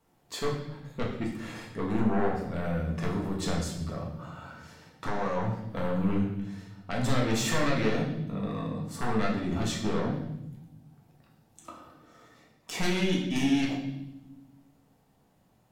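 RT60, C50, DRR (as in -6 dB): 0.90 s, 5.0 dB, -2.5 dB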